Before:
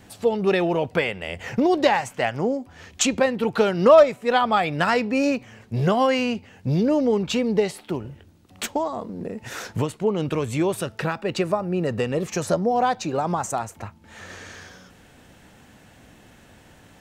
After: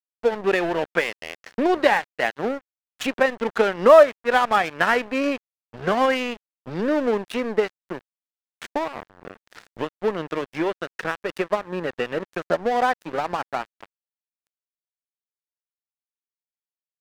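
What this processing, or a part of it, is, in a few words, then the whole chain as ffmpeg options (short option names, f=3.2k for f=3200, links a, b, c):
pocket radio on a weak battery: -af "highpass=250,lowpass=3.1k,aeval=exprs='sgn(val(0))*max(abs(val(0))-0.0299,0)':c=same,equalizer=f=1.7k:t=o:w=0.52:g=5,volume=2dB"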